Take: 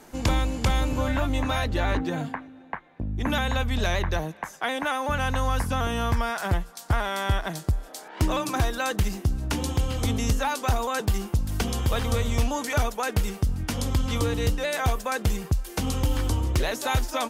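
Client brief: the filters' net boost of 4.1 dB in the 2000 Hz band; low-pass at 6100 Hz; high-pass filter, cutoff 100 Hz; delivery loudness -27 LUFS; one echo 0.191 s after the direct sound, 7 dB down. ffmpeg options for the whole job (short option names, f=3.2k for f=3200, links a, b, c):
-af "highpass=100,lowpass=6.1k,equalizer=f=2k:t=o:g=5.5,aecho=1:1:191:0.447"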